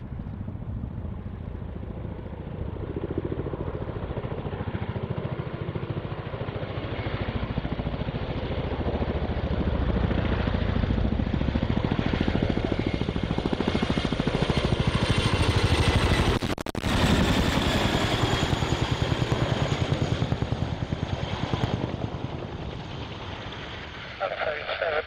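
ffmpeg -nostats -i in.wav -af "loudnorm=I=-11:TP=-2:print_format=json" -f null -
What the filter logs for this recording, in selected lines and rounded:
"input_i" : "-28.1",
"input_tp" : "-9.4",
"input_lra" : "8.4",
"input_thresh" : "-38.1",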